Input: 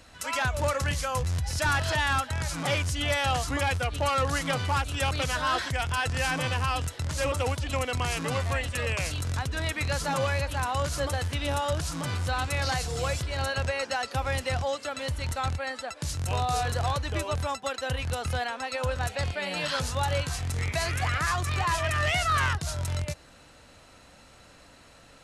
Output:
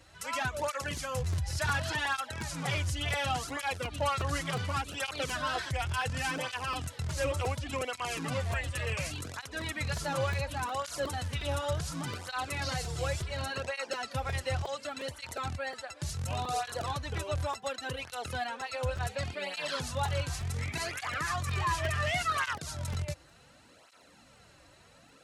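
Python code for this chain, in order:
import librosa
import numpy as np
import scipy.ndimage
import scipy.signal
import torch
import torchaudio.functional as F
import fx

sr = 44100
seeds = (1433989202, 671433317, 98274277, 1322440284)

y = fx.buffer_crackle(x, sr, first_s=0.97, period_s=0.36, block=128, kind='repeat')
y = fx.flanger_cancel(y, sr, hz=0.69, depth_ms=4.8)
y = F.gain(torch.from_numpy(y), -2.0).numpy()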